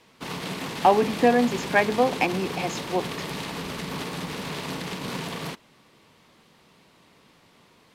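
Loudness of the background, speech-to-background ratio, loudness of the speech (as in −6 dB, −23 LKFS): −32.5 LKFS, 9.0 dB, −23.5 LKFS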